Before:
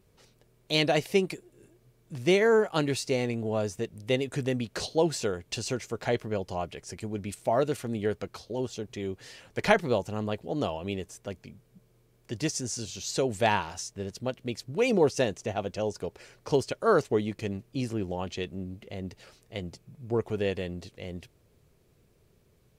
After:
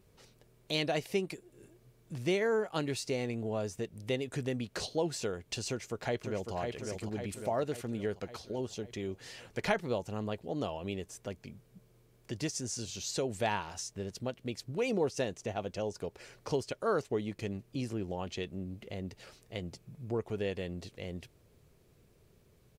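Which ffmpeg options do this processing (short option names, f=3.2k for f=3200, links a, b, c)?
-filter_complex "[0:a]asplit=2[a][b];[b]afade=t=in:st=5.68:d=0.01,afade=t=out:st=6.54:d=0.01,aecho=0:1:550|1100|1650|2200|2750|3300|3850:0.501187|0.275653|0.151609|0.083385|0.0458618|0.025224|0.0138732[c];[a][c]amix=inputs=2:normalize=0,acompressor=threshold=-41dB:ratio=1.5"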